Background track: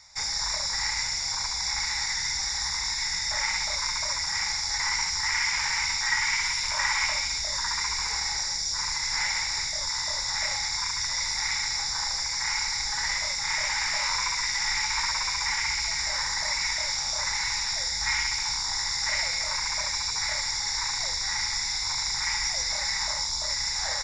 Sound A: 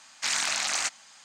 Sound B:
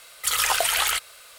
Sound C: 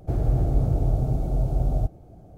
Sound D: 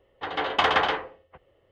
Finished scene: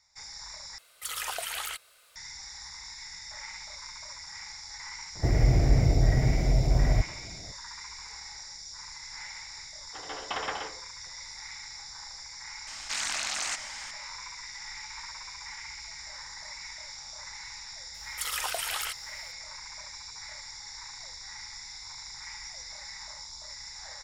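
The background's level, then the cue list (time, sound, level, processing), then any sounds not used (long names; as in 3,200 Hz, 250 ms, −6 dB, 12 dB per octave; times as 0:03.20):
background track −14.5 dB
0:00.78: overwrite with B −12.5 dB
0:05.15: mix in C
0:09.72: mix in D −12.5 dB
0:12.67: mix in A −5.5 dB + envelope flattener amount 50%
0:17.94: mix in B −10.5 dB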